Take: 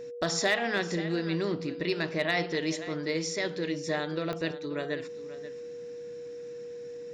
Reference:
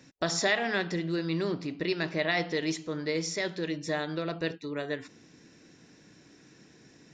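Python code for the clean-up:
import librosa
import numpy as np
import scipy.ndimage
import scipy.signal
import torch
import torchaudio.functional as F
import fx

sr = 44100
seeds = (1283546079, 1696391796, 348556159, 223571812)

y = fx.fix_declip(x, sr, threshold_db=-17.5)
y = fx.fix_declick_ar(y, sr, threshold=10.0)
y = fx.notch(y, sr, hz=480.0, q=30.0)
y = fx.fix_echo_inverse(y, sr, delay_ms=532, level_db=-14.5)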